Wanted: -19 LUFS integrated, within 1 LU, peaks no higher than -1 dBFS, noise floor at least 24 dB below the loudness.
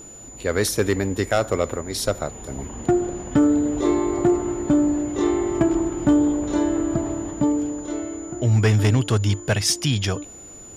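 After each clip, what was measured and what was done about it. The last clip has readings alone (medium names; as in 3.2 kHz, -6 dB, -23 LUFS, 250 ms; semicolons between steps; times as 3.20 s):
clipped samples 0.4%; clipping level -10.5 dBFS; steady tone 7 kHz; tone level -40 dBFS; loudness -22.0 LUFS; peak level -10.5 dBFS; loudness target -19.0 LUFS
-> clip repair -10.5 dBFS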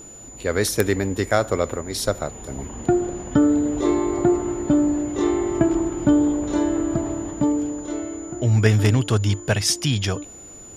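clipped samples 0.0%; steady tone 7 kHz; tone level -40 dBFS
-> band-stop 7 kHz, Q 30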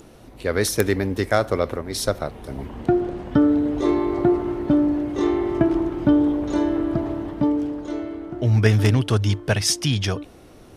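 steady tone not found; loudness -21.5 LUFS; peak level -1.5 dBFS; loudness target -19.0 LUFS
-> trim +2.5 dB; peak limiter -1 dBFS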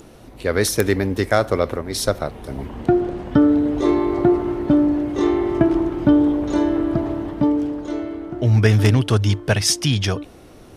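loudness -19.0 LUFS; peak level -1.0 dBFS; noise floor -43 dBFS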